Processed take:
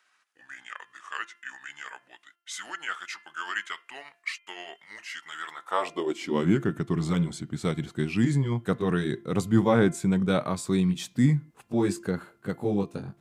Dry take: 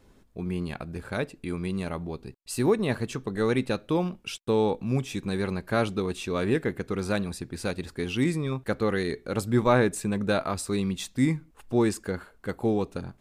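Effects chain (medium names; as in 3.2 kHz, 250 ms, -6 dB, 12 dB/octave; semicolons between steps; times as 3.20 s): pitch bend over the whole clip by -5.5 st ending unshifted; de-hum 344.7 Hz, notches 9; high-pass sweep 1.5 kHz -> 140 Hz, 5.46–6.58 s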